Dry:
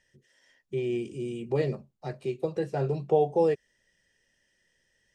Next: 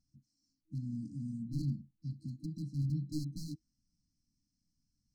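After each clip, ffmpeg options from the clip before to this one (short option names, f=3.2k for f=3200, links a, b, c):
-af "aemphasis=mode=reproduction:type=75fm,aeval=exprs='0.0794*(abs(mod(val(0)/0.0794+3,4)-2)-1)':c=same,afftfilt=real='re*(1-between(b*sr/4096,320,4000))':imag='im*(1-between(b*sr/4096,320,4000))':win_size=4096:overlap=0.75,volume=-1.5dB"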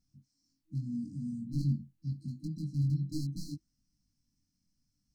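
-af "flanger=delay=20:depth=2:speed=0.77,volume=5.5dB"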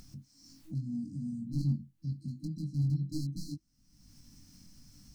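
-af "acompressor=mode=upward:threshold=-35dB:ratio=2.5,aeval=exprs='0.0891*(cos(1*acos(clip(val(0)/0.0891,-1,1)))-cos(1*PI/2))+0.000562*(cos(7*acos(clip(val(0)/0.0891,-1,1)))-cos(7*PI/2))':c=same"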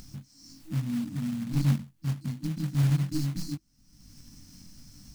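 -af "acrusher=bits=4:mode=log:mix=0:aa=0.000001,volume=6dB"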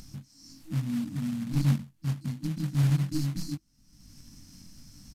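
-af "aresample=32000,aresample=44100"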